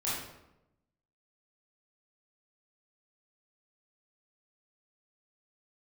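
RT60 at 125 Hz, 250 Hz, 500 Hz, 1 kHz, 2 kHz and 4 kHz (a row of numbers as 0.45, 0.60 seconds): 1.2, 1.1, 0.95, 0.85, 0.70, 0.60 seconds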